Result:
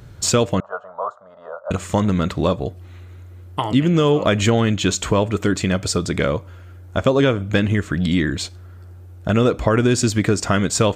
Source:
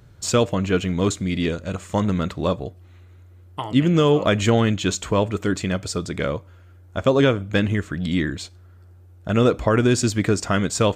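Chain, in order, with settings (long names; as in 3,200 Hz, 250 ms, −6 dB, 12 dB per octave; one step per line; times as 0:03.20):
0:00.60–0:01.71: elliptic band-pass filter 580–1,300 Hz, stop band 40 dB
downward compressor 2 to 1, threshold −26 dBFS, peak gain reduction 8 dB
level +8 dB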